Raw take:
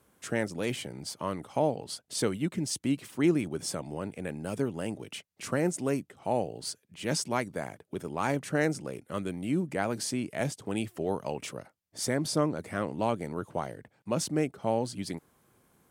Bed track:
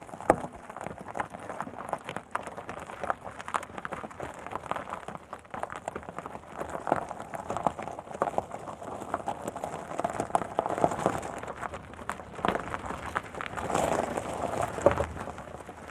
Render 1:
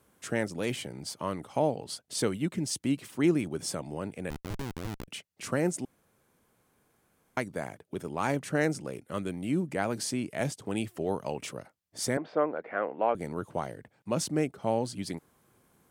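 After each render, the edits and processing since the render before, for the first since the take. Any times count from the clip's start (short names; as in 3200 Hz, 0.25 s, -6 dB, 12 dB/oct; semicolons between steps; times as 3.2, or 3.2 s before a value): 4.3–5.08 Schmitt trigger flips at -32 dBFS; 5.85–7.37 room tone; 12.17–13.15 speaker cabinet 390–2500 Hz, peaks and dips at 490 Hz +5 dB, 730 Hz +5 dB, 1500 Hz +4 dB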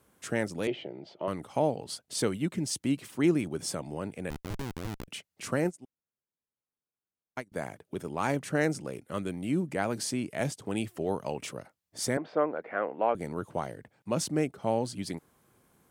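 0.67–1.28 speaker cabinet 210–3200 Hz, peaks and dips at 240 Hz -7 dB, 360 Hz +7 dB, 640 Hz +7 dB, 1100 Hz -10 dB, 1600 Hz -9 dB, 2300 Hz -5 dB; 5.64–7.52 upward expander 2.5:1, over -46 dBFS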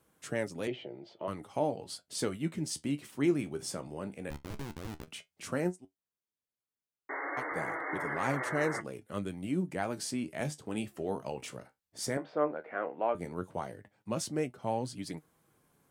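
7.09–8.81 painted sound noise 270–2200 Hz -33 dBFS; flange 0.13 Hz, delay 6 ms, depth 9.8 ms, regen +56%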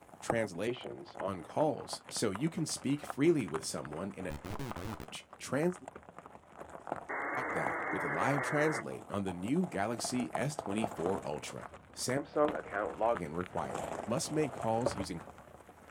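add bed track -12 dB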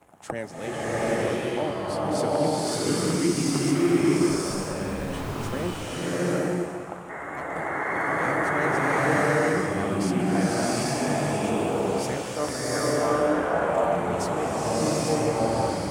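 bloom reverb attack 0.83 s, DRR -10 dB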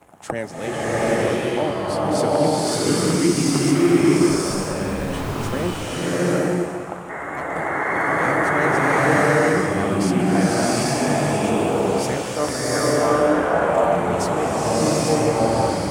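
gain +5.5 dB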